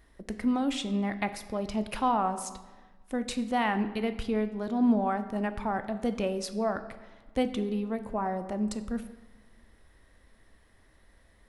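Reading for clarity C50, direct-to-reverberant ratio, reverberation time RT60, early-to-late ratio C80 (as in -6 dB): 12.0 dB, 9.0 dB, 1.3 s, 14.0 dB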